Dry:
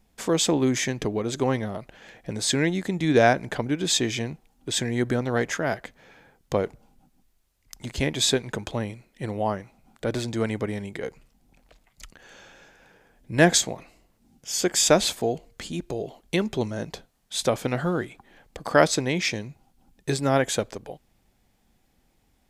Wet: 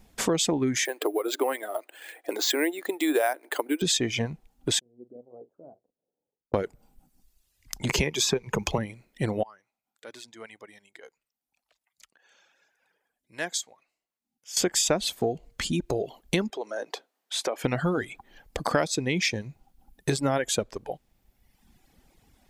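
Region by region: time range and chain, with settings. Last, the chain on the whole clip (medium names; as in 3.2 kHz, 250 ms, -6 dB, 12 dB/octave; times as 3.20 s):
0.85–3.82 s: elliptic high-pass 310 Hz, stop band 50 dB + careless resampling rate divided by 4×, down filtered, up hold
4.79–6.54 s: inverse Chebyshev low-pass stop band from 1.8 kHz, stop band 60 dB + differentiator + doubling 41 ms -8 dB
7.89–8.78 s: rippled EQ curve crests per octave 0.79, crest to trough 8 dB + three bands compressed up and down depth 70%
9.43–14.57 s: low-pass 1.1 kHz 6 dB/octave + differentiator
16.50–17.64 s: high-pass 320 Hz 24 dB/octave + treble shelf 4 kHz -7 dB + compression 2.5:1, threshold -34 dBFS
whole clip: reverb removal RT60 1.2 s; compression 4:1, threshold -31 dBFS; trim +7.5 dB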